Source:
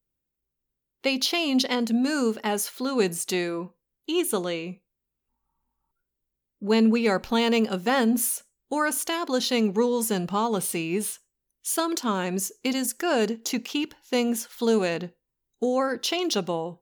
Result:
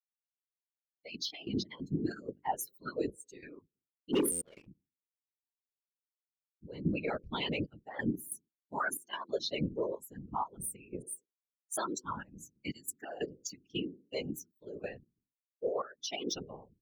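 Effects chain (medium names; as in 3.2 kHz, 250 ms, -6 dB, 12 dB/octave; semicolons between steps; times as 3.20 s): expander on every frequency bin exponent 3; 15.04–15.67 s: Chebyshev high-pass 350 Hz, order 2; hum notches 50/100/150/200/250/300/350/400 Hz; peak limiter -25 dBFS, peak gain reduction 10 dB; 11.02–11.77 s: phase dispersion highs, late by 50 ms, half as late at 840 Hz; whisper effect; trance gate "xxxxx..x.x.xx." 92 bpm -12 dB; 4.13–4.67 s: waveshaping leveller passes 2; buffer glitch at 4.31 s, samples 512, times 8; trim -1 dB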